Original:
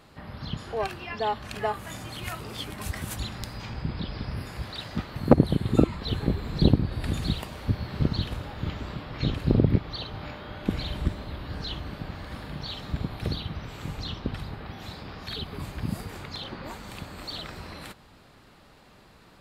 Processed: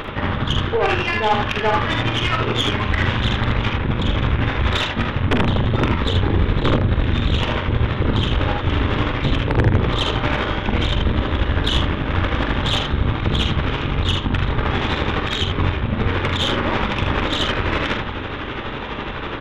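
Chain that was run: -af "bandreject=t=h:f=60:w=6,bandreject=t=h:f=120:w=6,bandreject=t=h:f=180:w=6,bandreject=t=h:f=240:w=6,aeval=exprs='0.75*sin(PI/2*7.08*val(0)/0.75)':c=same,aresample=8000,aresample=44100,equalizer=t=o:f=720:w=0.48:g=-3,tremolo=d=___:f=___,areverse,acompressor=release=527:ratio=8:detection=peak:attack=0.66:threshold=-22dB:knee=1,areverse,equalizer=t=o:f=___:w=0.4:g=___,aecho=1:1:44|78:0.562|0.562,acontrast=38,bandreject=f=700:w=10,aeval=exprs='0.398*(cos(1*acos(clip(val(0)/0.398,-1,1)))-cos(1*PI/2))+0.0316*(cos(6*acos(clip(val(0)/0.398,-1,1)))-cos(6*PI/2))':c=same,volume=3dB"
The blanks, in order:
0.6, 12, 170, -8.5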